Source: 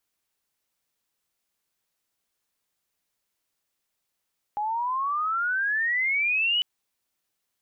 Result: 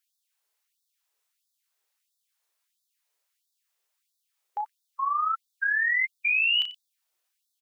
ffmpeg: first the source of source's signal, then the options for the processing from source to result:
-f lavfi -i "aevalsrc='pow(10,(-25+4.5*t/2.05)/20)*sin(2*PI*820*2.05/log(3000/820)*(exp(log(3000/820)*t/2.05)-1))':duration=2.05:sample_rate=44100"
-filter_complex "[0:a]asplit=2[link_01][link_02];[link_02]adelay=34,volume=-7.5dB[link_03];[link_01][link_03]amix=inputs=2:normalize=0,aecho=1:1:91:0.188,afftfilt=real='re*gte(b*sr/1024,330*pow(3500/330,0.5+0.5*sin(2*PI*1.5*pts/sr)))':imag='im*gte(b*sr/1024,330*pow(3500/330,0.5+0.5*sin(2*PI*1.5*pts/sr)))':win_size=1024:overlap=0.75"

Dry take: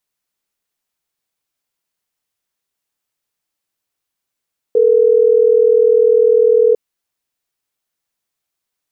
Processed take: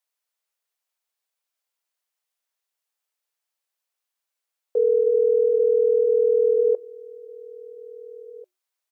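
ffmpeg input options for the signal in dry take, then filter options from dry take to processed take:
-f lavfi -i "aevalsrc='0.299*(sin(2*PI*440*t)+sin(2*PI*480*t))*clip(min(mod(t,6),2-mod(t,6))/0.005,0,1)':duration=3.12:sample_rate=44100"
-filter_complex "[0:a]highpass=frequency=470:width=0.5412,highpass=frequency=470:width=1.3066,flanger=delay=1.1:depth=3.1:regen=-89:speed=0.66:shape=triangular,asplit=2[link_01][link_02];[link_02]adelay=1691,volume=-21dB,highshelf=frequency=4000:gain=-38[link_03];[link_01][link_03]amix=inputs=2:normalize=0"

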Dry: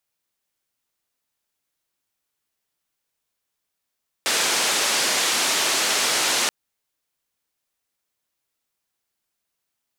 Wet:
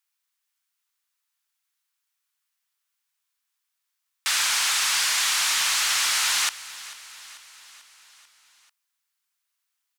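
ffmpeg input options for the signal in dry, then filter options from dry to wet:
-f lavfi -i "anoisesrc=color=white:duration=2.23:sample_rate=44100:seed=1,highpass=frequency=290,lowpass=frequency=7200,volume=-11.8dB"
-af "highpass=frequency=1000:width=0.5412,highpass=frequency=1000:width=1.3066,asoftclip=type=tanh:threshold=-14.5dB,aecho=1:1:441|882|1323|1764|2205:0.126|0.0743|0.0438|0.0259|0.0153"

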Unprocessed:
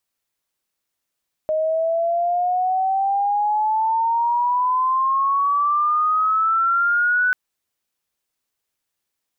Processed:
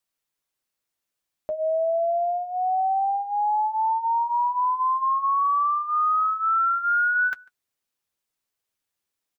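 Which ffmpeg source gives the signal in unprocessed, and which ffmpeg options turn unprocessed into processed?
-f lavfi -i "aevalsrc='pow(10,(-17.5+2.5*t/5.84)/20)*sin(2*PI*620*5.84/log(1500/620)*(exp(log(1500/620)*t/5.84)-1))':duration=5.84:sample_rate=44100"
-filter_complex "[0:a]flanger=delay=5.9:depth=5.1:regen=-42:speed=0.28:shape=triangular,asplit=2[link_01][link_02];[link_02]adelay=145.8,volume=-26dB,highshelf=frequency=4000:gain=-3.28[link_03];[link_01][link_03]amix=inputs=2:normalize=0"

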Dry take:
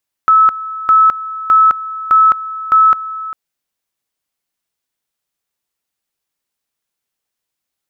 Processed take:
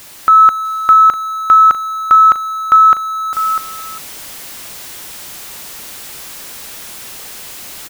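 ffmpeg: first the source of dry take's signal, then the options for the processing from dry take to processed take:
-f lavfi -i "aevalsrc='pow(10,(-5-16*gte(mod(t,0.61),0.21))/20)*sin(2*PI*1300*t)':duration=3.05:sample_rate=44100"
-af "aeval=exprs='val(0)+0.5*0.0299*sgn(val(0))':channel_layout=same,aecho=1:1:648:0.224,dynaudnorm=framelen=120:gausssize=5:maxgain=6dB"

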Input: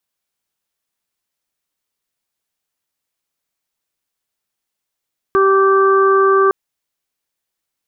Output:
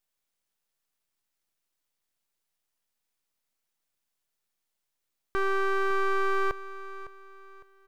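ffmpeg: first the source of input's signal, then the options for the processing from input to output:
-f lavfi -i "aevalsrc='0.282*sin(2*PI*389*t)+0.0282*sin(2*PI*778*t)+0.224*sin(2*PI*1167*t)+0.0794*sin(2*PI*1556*t)':duration=1.16:sample_rate=44100"
-af "alimiter=limit=-17.5dB:level=0:latency=1,aeval=exprs='max(val(0),0)':channel_layout=same,aecho=1:1:557|1114|1671:0.178|0.0605|0.0206"

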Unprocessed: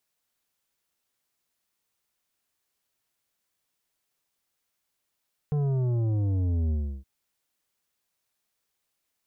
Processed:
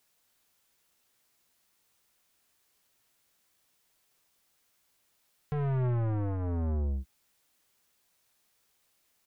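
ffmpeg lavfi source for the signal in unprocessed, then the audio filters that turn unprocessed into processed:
-f lavfi -i "aevalsrc='0.0631*clip((1.52-t)/0.33,0,1)*tanh(2.99*sin(2*PI*150*1.52/log(65/150)*(exp(log(65/150)*t/1.52)-1)))/tanh(2.99)':duration=1.52:sample_rate=44100"
-filter_complex "[0:a]asplit=2[link_01][link_02];[link_02]acompressor=threshold=-35dB:ratio=6,volume=2.5dB[link_03];[link_01][link_03]amix=inputs=2:normalize=0,aeval=exprs='(tanh(28.2*val(0)+0.15)-tanh(0.15))/28.2':channel_layout=same,asplit=2[link_04][link_05];[link_05]adelay=16,volume=-11dB[link_06];[link_04][link_06]amix=inputs=2:normalize=0"

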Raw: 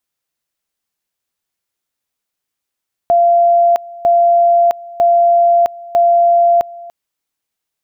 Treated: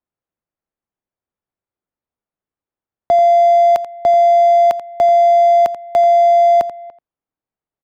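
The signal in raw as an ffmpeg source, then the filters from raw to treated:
-f lavfi -i "aevalsrc='pow(10,(-7-21.5*gte(mod(t,0.95),0.66))/20)*sin(2*PI*689*t)':duration=3.8:sample_rate=44100"
-filter_complex "[0:a]acrossover=split=230[link_01][link_02];[link_02]adynamicsmooth=sensitivity=2:basefreq=1200[link_03];[link_01][link_03]amix=inputs=2:normalize=0,aecho=1:1:86:0.2"

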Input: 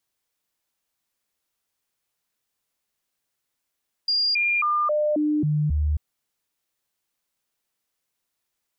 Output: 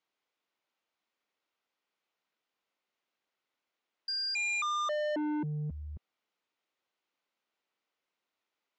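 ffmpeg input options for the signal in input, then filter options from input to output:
-f lavfi -i "aevalsrc='0.112*clip(min(mod(t,0.27),0.27-mod(t,0.27))/0.005,0,1)*sin(2*PI*4810*pow(2,-floor(t/0.27)/1)*mod(t,0.27))':duration=1.89:sample_rate=44100"
-filter_complex "[0:a]acrossover=split=200 3800:gain=0.1 1 0.158[link_01][link_02][link_03];[link_01][link_02][link_03]amix=inputs=3:normalize=0,bandreject=frequency=1700:width=15,aresample=16000,asoftclip=type=tanh:threshold=-31dB,aresample=44100"

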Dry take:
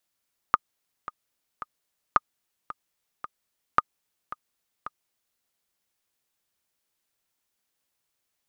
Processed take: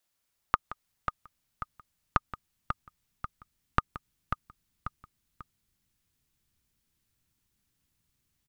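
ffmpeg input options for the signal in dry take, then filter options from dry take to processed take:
-f lavfi -i "aevalsrc='pow(10,(-4.5-16.5*gte(mod(t,3*60/111),60/111))/20)*sin(2*PI*1230*mod(t,60/111))*exp(-6.91*mod(t,60/111)/0.03)':duration=4.86:sample_rate=44100"
-filter_complex "[0:a]asubboost=boost=10.5:cutoff=180,acompressor=threshold=-20dB:ratio=6,asplit=2[link_01][link_02];[link_02]aecho=0:1:175|542:0.158|0.376[link_03];[link_01][link_03]amix=inputs=2:normalize=0"

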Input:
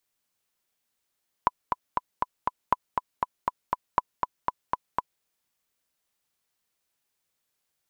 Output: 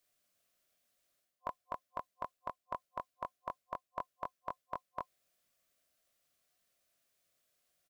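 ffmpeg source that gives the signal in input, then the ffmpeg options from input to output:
-f lavfi -i "aevalsrc='pow(10,(-6.5-4.5*gte(mod(t,5*60/239),60/239))/20)*sin(2*PI*996*mod(t,60/239))*exp(-6.91*mod(t,60/239)/0.03)':duration=3.76:sample_rate=44100"
-filter_complex "[0:a]asplit=2[link_01][link_02];[link_02]adelay=22,volume=-8dB[link_03];[link_01][link_03]amix=inputs=2:normalize=0,areverse,acompressor=threshold=-34dB:ratio=5,areverse,superequalizer=8b=2.24:9b=0.447"

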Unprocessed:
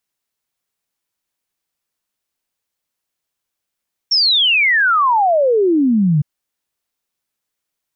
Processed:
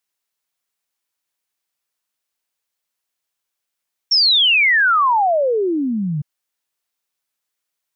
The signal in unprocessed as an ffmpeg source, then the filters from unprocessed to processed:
-f lavfi -i "aevalsrc='0.299*clip(min(t,2.11-t)/0.01,0,1)*sin(2*PI*5600*2.11/log(140/5600)*(exp(log(140/5600)*t/2.11)-1))':duration=2.11:sample_rate=44100"
-af "lowshelf=frequency=400:gain=-9"

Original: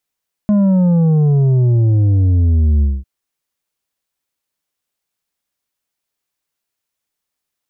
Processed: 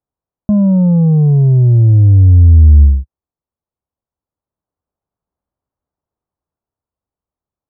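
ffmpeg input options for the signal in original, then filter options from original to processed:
-f lavfi -i "aevalsrc='0.316*clip((2.55-t)/0.22,0,1)*tanh(2.11*sin(2*PI*210*2.55/log(65/210)*(exp(log(65/210)*t/2.55)-1)))/tanh(2.11)':duration=2.55:sample_rate=44100"
-af "lowpass=frequency=1100:width=0.5412,lowpass=frequency=1100:width=1.3066,equalizer=frequency=72:width_type=o:width=1.9:gain=10.5,dynaudnorm=framelen=280:gausssize=11:maxgain=4dB"

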